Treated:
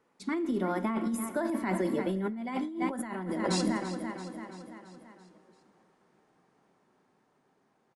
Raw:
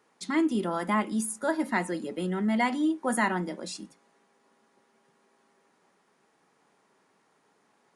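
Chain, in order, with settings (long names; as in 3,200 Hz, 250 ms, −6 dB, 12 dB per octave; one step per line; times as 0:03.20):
source passing by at 0:03.52, 18 m/s, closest 14 metres
spectral tilt −2 dB per octave
repeating echo 336 ms, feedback 56%, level −14 dB
four-comb reverb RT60 1.3 s, combs from 28 ms, DRR 14.5 dB
compressor whose output falls as the input rises −36 dBFS, ratio −1
level +4.5 dB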